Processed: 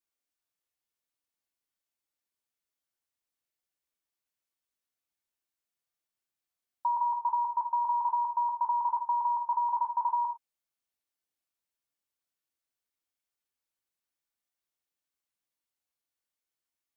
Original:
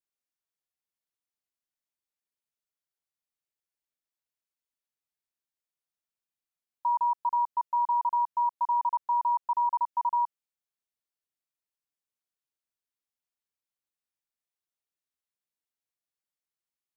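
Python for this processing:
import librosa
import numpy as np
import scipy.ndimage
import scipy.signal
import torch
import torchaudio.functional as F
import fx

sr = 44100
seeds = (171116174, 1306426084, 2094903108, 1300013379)

y = fx.rev_gated(x, sr, seeds[0], gate_ms=130, shape='falling', drr_db=2.5)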